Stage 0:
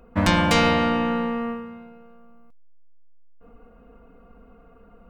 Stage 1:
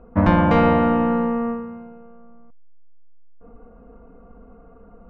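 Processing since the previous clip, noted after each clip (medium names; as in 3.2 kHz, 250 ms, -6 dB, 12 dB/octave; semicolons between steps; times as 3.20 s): low-pass 1.2 kHz 12 dB/octave; trim +4.5 dB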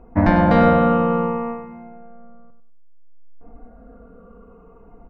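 drifting ripple filter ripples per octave 0.73, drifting -0.6 Hz, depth 8 dB; on a send: feedback delay 97 ms, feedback 26%, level -9 dB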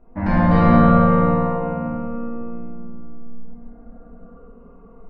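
reverberation RT60 3.3 s, pre-delay 5 ms, DRR -9 dB; trim -10.5 dB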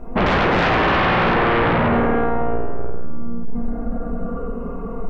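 compression 6:1, threshold -22 dBFS, peak gain reduction 13 dB; sine folder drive 14 dB, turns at -13.5 dBFS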